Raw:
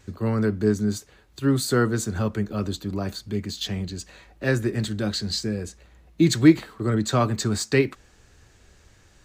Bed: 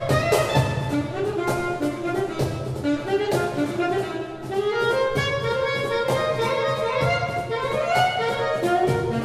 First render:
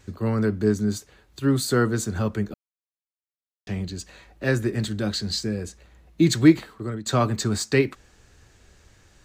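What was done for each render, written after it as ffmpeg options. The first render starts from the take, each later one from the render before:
-filter_complex "[0:a]asplit=4[a][b][c][d];[a]atrim=end=2.54,asetpts=PTS-STARTPTS,afade=t=out:st=2.536:d=0.004:c=hsin[e];[b]atrim=start=2.54:end=3.67,asetpts=PTS-STARTPTS,volume=0[f];[c]atrim=start=3.67:end=7.06,asetpts=PTS-STARTPTS,afade=t=in:d=0.004:c=hsin,afade=t=out:st=2.72:d=0.67:c=qsin:silence=0.149624[g];[d]atrim=start=7.06,asetpts=PTS-STARTPTS,afade=t=in:d=0.004:c=hsin:silence=0.149624[h];[e][f][g][h]concat=n=4:v=0:a=1"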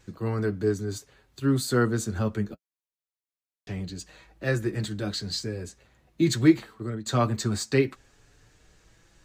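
-af "flanger=delay=5.9:depth=3.2:regen=-29:speed=0.22:shape=triangular"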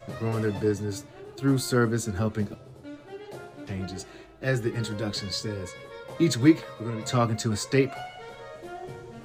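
-filter_complex "[1:a]volume=-19dB[a];[0:a][a]amix=inputs=2:normalize=0"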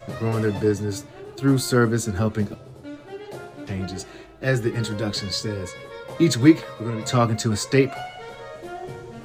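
-af "volume=4.5dB"

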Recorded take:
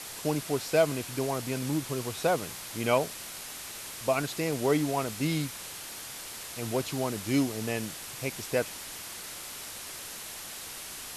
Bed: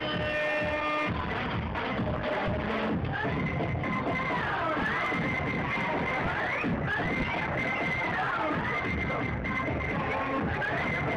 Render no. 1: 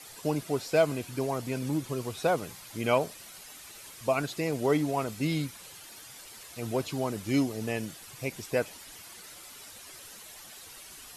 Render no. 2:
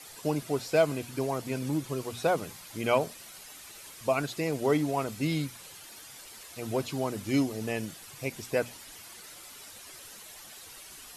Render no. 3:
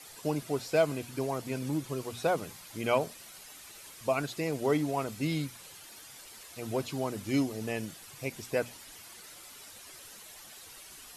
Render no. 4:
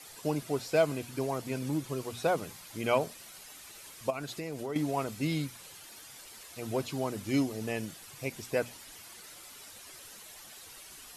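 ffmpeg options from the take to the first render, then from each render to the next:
-af "afftdn=nr=10:nf=-42"
-af "bandreject=f=60:t=h:w=6,bandreject=f=120:t=h:w=6,bandreject=f=180:t=h:w=6,bandreject=f=240:t=h:w=6"
-af "volume=-2dB"
-filter_complex "[0:a]asettb=1/sr,asplit=3[a][b][c];[a]atrim=end=4.104[d];[b]atrim=start=4.1:end=4.76,asetpts=PTS-STARTPTS,afade=t=in:d=0.004:c=qsin,afade=t=out:st=0.656:d=0.004:c=qsin,acompressor=threshold=-34dB:ratio=4:attack=3.2:release=140:knee=1:detection=peak[e];[c]atrim=start=4.756[f];[d][e]acrossfade=d=0.004:c1=hsin:c2=qsin[g];[g][f]acrossfade=d=0.004:c1=qsin:c2=hsin"

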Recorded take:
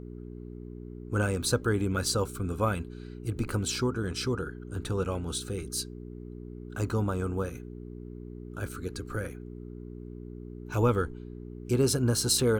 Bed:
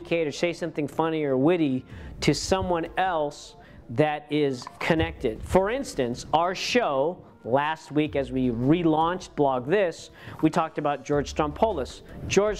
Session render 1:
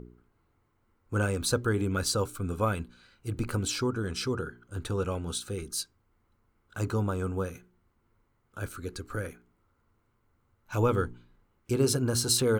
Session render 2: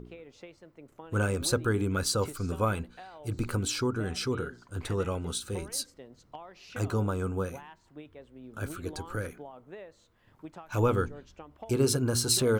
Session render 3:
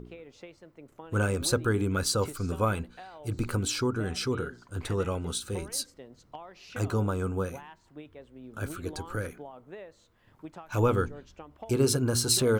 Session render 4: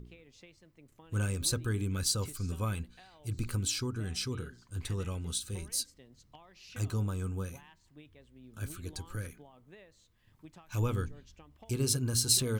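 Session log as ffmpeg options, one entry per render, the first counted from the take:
-af "bandreject=f=60:t=h:w=4,bandreject=f=120:t=h:w=4,bandreject=f=180:t=h:w=4,bandreject=f=240:t=h:w=4,bandreject=f=300:t=h:w=4,bandreject=f=360:t=h:w=4,bandreject=f=420:t=h:w=4"
-filter_complex "[1:a]volume=-23dB[a];[0:a][a]amix=inputs=2:normalize=0"
-af "volume=1dB"
-af "equalizer=f=630:w=0.41:g=-13.5,bandreject=f=1.4k:w=11"

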